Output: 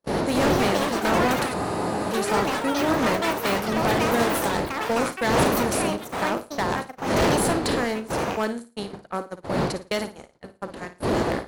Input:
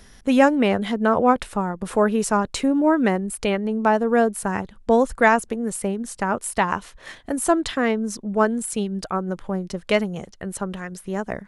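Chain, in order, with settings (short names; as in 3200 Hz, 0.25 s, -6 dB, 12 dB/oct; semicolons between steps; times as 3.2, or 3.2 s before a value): per-bin compression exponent 0.6; wind noise 520 Hz -16 dBFS; HPF 100 Hz 6 dB/oct; gate -19 dBFS, range -52 dB; bell 4400 Hz +9.5 dB 0.37 oct; hard clip -10 dBFS, distortion -7 dB; high shelf 6100 Hz +8 dB; flutter echo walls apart 9.5 m, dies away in 0.29 s; echoes that change speed 0.305 s, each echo +6 st, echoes 3; spectral freeze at 1.55, 0.55 s; gain -8.5 dB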